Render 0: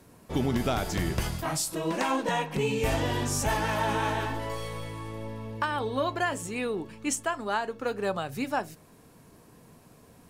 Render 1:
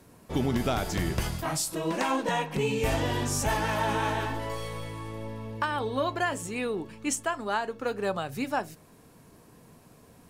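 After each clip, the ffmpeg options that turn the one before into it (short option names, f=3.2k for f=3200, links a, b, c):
-af anull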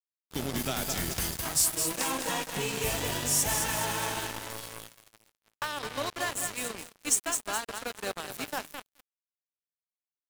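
-filter_complex "[0:a]acrossover=split=170[a][b];[b]crystalizer=i=4:c=0[c];[a][c]amix=inputs=2:normalize=0,aecho=1:1:211|422|633|844|1055|1266:0.501|0.246|0.12|0.059|0.0289|0.0142,acrusher=bits=3:mix=0:aa=0.5,volume=-7.5dB"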